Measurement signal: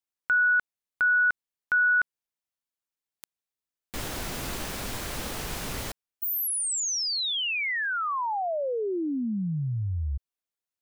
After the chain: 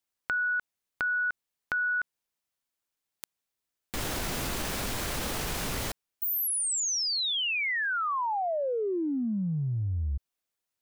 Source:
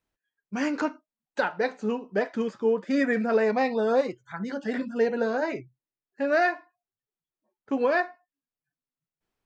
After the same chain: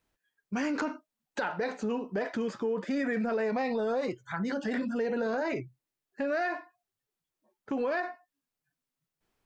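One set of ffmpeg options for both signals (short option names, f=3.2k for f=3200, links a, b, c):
-af "acompressor=threshold=-33dB:ratio=6:attack=2.4:release=51:knee=6:detection=peak,volume=5dB"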